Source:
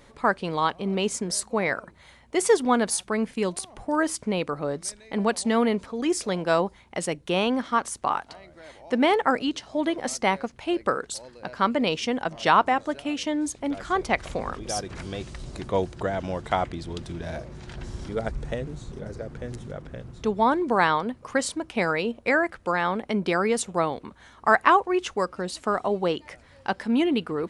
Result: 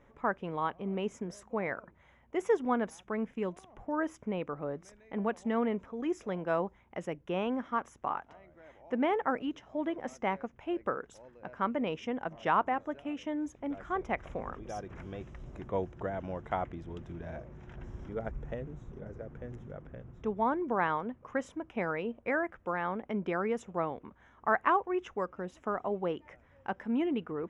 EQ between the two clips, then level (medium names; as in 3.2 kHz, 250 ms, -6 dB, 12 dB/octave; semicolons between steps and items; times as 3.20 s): boxcar filter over 10 samples; -8.0 dB